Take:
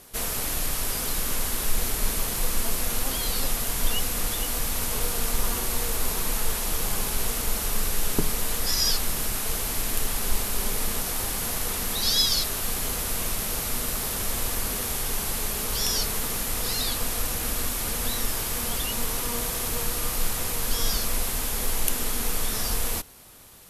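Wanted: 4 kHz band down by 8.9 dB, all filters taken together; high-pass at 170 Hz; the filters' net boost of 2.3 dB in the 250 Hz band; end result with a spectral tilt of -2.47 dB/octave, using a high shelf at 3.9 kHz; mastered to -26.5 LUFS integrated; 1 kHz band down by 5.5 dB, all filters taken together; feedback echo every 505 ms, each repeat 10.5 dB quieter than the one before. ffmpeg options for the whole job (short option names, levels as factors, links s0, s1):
-af "highpass=170,equalizer=f=250:t=o:g=4.5,equalizer=f=1000:t=o:g=-6.5,highshelf=f=3900:g=-7,equalizer=f=4000:t=o:g=-6.5,aecho=1:1:505|1010|1515:0.299|0.0896|0.0269,volume=1.88"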